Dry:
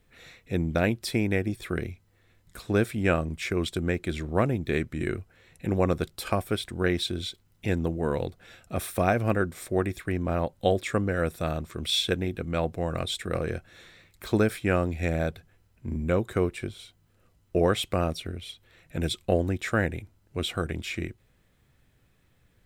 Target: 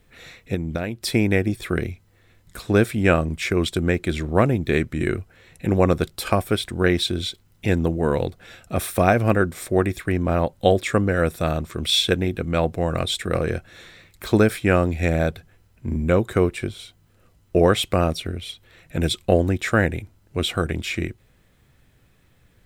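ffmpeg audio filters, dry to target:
-filter_complex "[0:a]asettb=1/sr,asplit=3[a][b][c];[a]atrim=end=0.544[d];[b]atrim=start=0.54:end=1.04,asetpts=PTS-STARTPTS,afade=t=in:d=0.004:c=qsin,afade=t=out:st=0.496:d=0.004:c=qsin,acompressor=threshold=-29dB:ratio=12[e];[c]atrim=start=1.036[f];[d][e]acrossfade=d=0.004:c1=hsin:c2=qsin[g];[g][f]acrossfade=d=0.004:c1=qsin:c2=hsin,volume=6.5dB"

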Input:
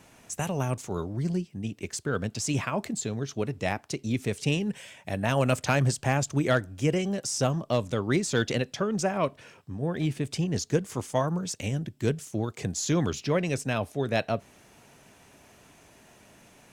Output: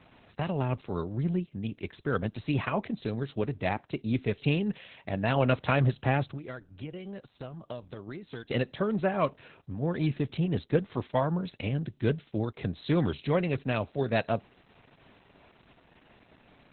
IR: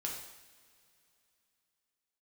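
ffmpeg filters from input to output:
-filter_complex "[0:a]asettb=1/sr,asplit=3[a][b][c];[a]atrim=end=6.314[d];[b]atrim=start=6.31:end=8.51,asetpts=PTS-STARTPTS,afade=t=in:d=0.004:c=qsin,afade=t=out:st=2.196:d=0.004:c=qsin,acompressor=threshold=-36dB:ratio=10[e];[c]atrim=start=8.506[f];[d][e]acrossfade=d=0.004:c1=hsin:c2=qsin[g];[g][f]acrossfade=d=0.004:c1=qsin:c2=hsin" -ar 48000 -c:a libopus -b:a 8k

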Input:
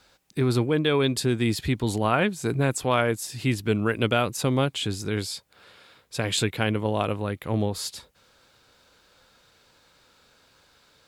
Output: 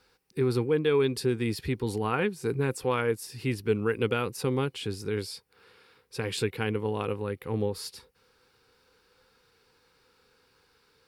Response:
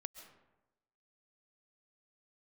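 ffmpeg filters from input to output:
-af "superequalizer=7b=2:8b=0.355:13b=0.631:15b=0.501,volume=-5.5dB"

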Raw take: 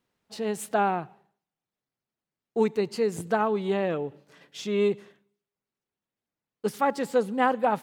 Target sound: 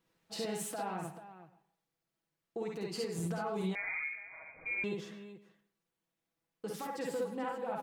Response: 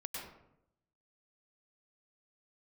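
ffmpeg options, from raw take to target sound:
-filter_complex "[0:a]aecho=1:1:6.1:0.51,acompressor=threshold=-29dB:ratio=6,alimiter=level_in=5dB:limit=-24dB:level=0:latency=1:release=289,volume=-5dB,aecho=1:1:53|65|437:0.668|0.668|0.237,asplit=2[a][b];[1:a]atrim=start_sample=2205,afade=t=out:st=0.2:d=0.01,atrim=end_sample=9261[c];[b][c]afir=irnorm=-1:irlink=0,volume=-8.5dB[d];[a][d]amix=inputs=2:normalize=0,asettb=1/sr,asplit=3[e][f][g];[e]atrim=end=3.754[h];[f]atrim=start=3.75:end=4.84,asetpts=PTS-STARTPTS,afade=t=in:d=0.004:c=qsin,afade=t=out:st=1.086:d=0.004:c=qsin,lowpass=f=2.2k:t=q:w=0.5098,lowpass=f=2.2k:t=q:w=0.6013,lowpass=f=2.2k:t=q:w=0.9,lowpass=f=2.2k:t=q:w=2.563,afreqshift=-2600[i];[g]atrim=start=4.836[j];[h][i]acrossfade=d=0.004:c1=hsin:c2=qsin[k];[k][j]acrossfade=d=0.004:c1=qsin:c2=hsin,volume=-3.5dB"

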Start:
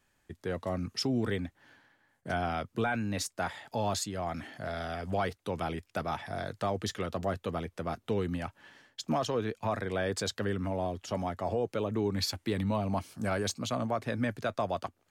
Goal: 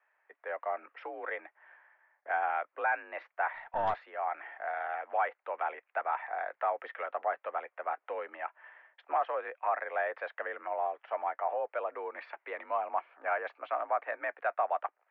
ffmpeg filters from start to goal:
-filter_complex "[0:a]highpass=f=560:t=q:w=0.5412,highpass=f=560:t=q:w=1.307,lowpass=f=2.2k:t=q:w=0.5176,lowpass=f=2.2k:t=q:w=0.7071,lowpass=f=2.2k:t=q:w=1.932,afreqshift=50,asettb=1/sr,asplit=3[a][b][c];[a]atrim=end=3.544[d];[b]atrim=start=3.54:end=4.1,asetpts=PTS-STARTPTS,afade=t=in:d=0.004:c=qsin,afade=t=out:st=0.556:d=0.004:c=qsin,aeval=exprs='0.0668*(cos(1*acos(clip(val(0)/0.0668,-1,1)))-cos(1*PI/2))+0.00841*(cos(4*acos(clip(val(0)/0.0668,-1,1)))-cos(4*PI/2))+0.00211*(cos(6*acos(clip(val(0)/0.0668,-1,1)))-cos(6*PI/2))+0.000668*(cos(8*acos(clip(val(0)/0.0668,-1,1)))-cos(8*PI/2))':c=same[e];[c]atrim=start=4.096[f];[d][e]acrossfade=d=0.004:c1=hsin:c2=qsin[g];[g][f]acrossfade=d=0.004:c1=qsin:c2=hsin,volume=3dB"

